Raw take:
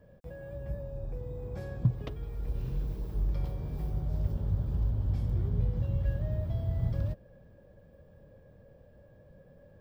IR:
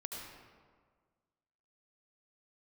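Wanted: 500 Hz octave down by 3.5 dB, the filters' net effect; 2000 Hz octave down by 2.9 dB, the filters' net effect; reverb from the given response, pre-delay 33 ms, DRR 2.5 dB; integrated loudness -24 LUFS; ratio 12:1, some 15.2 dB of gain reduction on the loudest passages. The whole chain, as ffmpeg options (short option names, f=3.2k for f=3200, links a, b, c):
-filter_complex "[0:a]equalizer=f=500:t=o:g=-4,equalizer=f=2k:t=o:g=-3.5,acompressor=threshold=-39dB:ratio=12,asplit=2[a][b];[1:a]atrim=start_sample=2205,adelay=33[c];[b][c]afir=irnorm=-1:irlink=0,volume=-2dB[d];[a][d]amix=inputs=2:normalize=0,volume=19dB"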